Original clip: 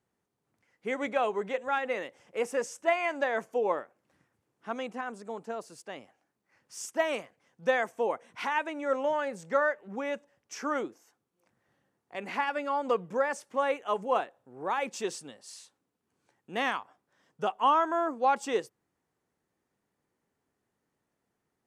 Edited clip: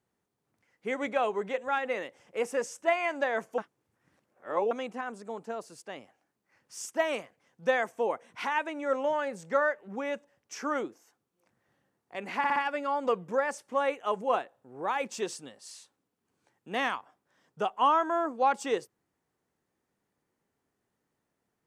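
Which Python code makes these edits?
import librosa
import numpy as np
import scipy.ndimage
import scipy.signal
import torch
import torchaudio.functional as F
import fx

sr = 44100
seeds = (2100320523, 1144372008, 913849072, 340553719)

y = fx.edit(x, sr, fx.reverse_span(start_s=3.58, length_s=1.13),
    fx.stutter(start_s=12.38, slice_s=0.06, count=4), tone=tone)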